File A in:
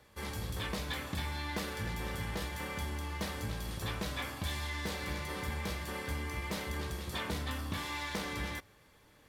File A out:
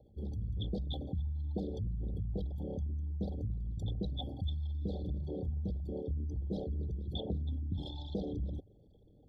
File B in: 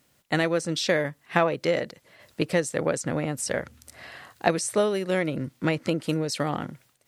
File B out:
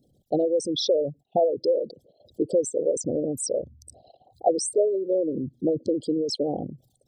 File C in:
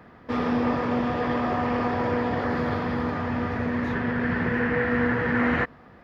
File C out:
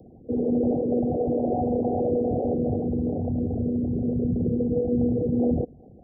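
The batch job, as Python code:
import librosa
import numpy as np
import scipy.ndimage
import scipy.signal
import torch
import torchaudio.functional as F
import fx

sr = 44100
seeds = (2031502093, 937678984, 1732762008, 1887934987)

y = fx.envelope_sharpen(x, sr, power=3.0)
y = scipy.signal.sosfilt(scipy.signal.cheby1(5, 1.0, [780.0, 3300.0], 'bandstop', fs=sr, output='sos'), y)
y = y * 10.0 ** (2.0 / 20.0)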